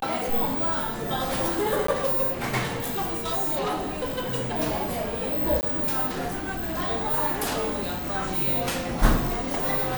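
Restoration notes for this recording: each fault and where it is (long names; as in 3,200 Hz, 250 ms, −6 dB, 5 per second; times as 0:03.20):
0:01.87–0:01.88: drop-out 14 ms
0:02.90–0:04.53: clipping −23 dBFS
0:05.61–0:05.63: drop-out 19 ms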